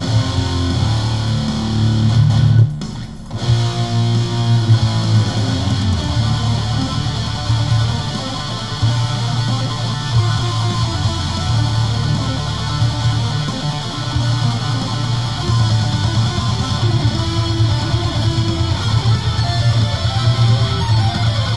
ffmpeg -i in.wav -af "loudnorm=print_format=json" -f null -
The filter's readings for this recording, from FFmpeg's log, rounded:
"input_i" : "-16.8",
"input_tp" : "-3.3",
"input_lra" : "2.6",
"input_thresh" : "-26.8",